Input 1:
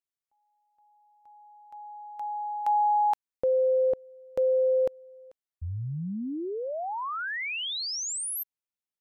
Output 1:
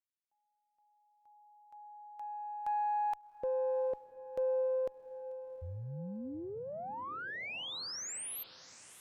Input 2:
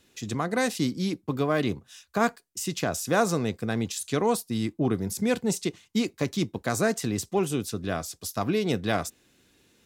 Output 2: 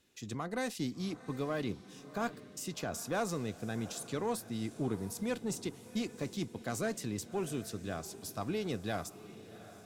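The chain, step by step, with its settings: single-diode clipper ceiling -13.5 dBFS; on a send: echo that smears into a reverb 739 ms, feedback 46%, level -15 dB; on the sum: trim -9 dB

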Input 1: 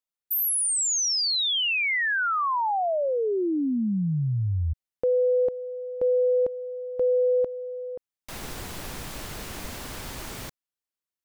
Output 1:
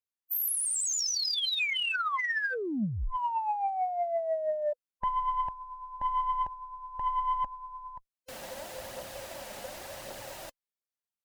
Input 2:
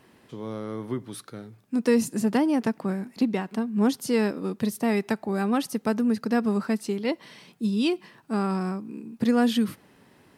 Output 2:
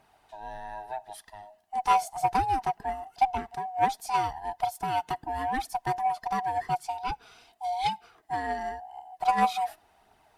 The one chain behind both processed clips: split-band scrambler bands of 500 Hz; phaser 0.89 Hz, delay 5 ms, feedback 34%; Chebyshev shaper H 3 -15 dB, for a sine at -8.5 dBFS

